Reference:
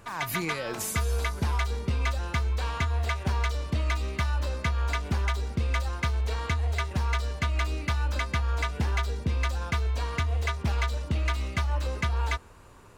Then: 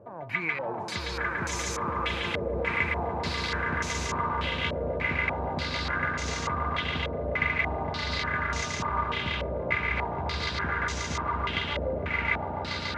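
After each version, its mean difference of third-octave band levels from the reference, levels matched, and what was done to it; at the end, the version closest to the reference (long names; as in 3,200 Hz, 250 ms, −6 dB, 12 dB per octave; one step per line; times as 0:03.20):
11.0 dB: high-pass filter 79 Hz 24 dB per octave
downward compressor, threshold −31 dBFS, peak gain reduction 7.5 dB
echo that builds up and dies away 143 ms, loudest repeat 8, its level −6.5 dB
low-pass on a step sequencer 3.4 Hz 570–6,300 Hz
level −1.5 dB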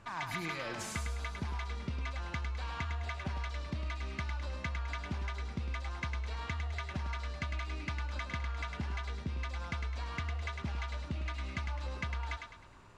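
4.5 dB: low-pass filter 5,800 Hz 12 dB per octave
parametric band 450 Hz −7 dB 0.48 octaves
downward compressor, threshold −30 dBFS, peak gain reduction 7.5 dB
feedback echo with a high-pass in the loop 104 ms, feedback 41%, high-pass 410 Hz, level −5 dB
level −4.5 dB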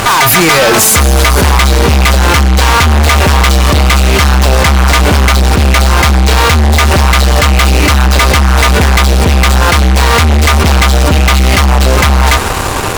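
7.0 dB: low-shelf EQ 430 Hz −4 dB
in parallel at −2 dB: compressor whose output falls as the input rises −41 dBFS
on the sum: fuzz pedal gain 42 dB, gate −46 dBFS
steady tone 780 Hz −32 dBFS
level +8 dB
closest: second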